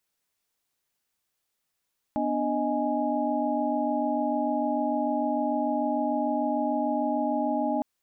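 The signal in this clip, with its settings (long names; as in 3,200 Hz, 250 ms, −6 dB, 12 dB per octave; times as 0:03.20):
held notes B3/D4/D#5/G#5 sine, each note −29.5 dBFS 5.66 s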